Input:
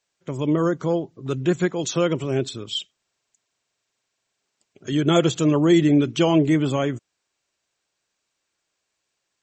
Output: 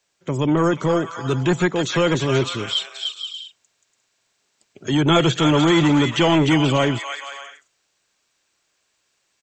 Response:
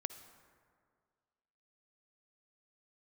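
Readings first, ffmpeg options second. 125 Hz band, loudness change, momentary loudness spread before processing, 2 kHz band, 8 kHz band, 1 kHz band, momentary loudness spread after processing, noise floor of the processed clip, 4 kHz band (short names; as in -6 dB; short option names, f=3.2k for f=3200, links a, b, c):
+3.5 dB, +2.0 dB, 12 LU, +8.5 dB, +1.5 dB, +7.0 dB, 14 LU, -70 dBFS, +7.5 dB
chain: -filter_complex "[0:a]acrossover=split=4300[a][b];[b]acompressor=threshold=-42dB:ratio=4:attack=1:release=60[c];[a][c]amix=inputs=2:normalize=0,acrossover=split=140|900[d][e][f];[e]asoftclip=type=tanh:threshold=-22dB[g];[f]aecho=1:1:300|480|588|652.8|691.7:0.631|0.398|0.251|0.158|0.1[h];[d][g][h]amix=inputs=3:normalize=0,volume=6.5dB"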